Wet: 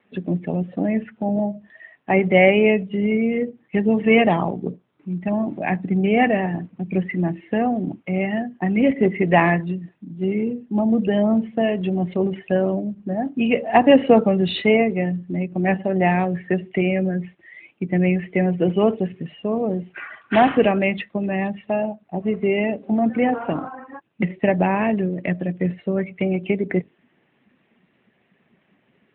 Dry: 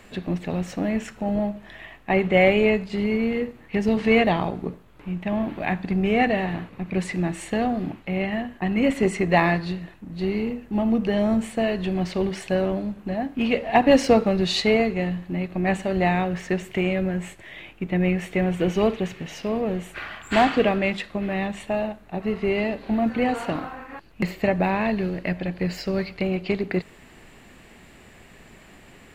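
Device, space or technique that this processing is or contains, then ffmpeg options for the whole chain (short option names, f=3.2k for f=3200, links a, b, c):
mobile call with aggressive noise cancelling: -af "highpass=f=120:w=0.5412,highpass=f=120:w=1.3066,afftdn=nr=16:nf=-33,volume=3.5dB" -ar 8000 -c:a libopencore_amrnb -b:a 12200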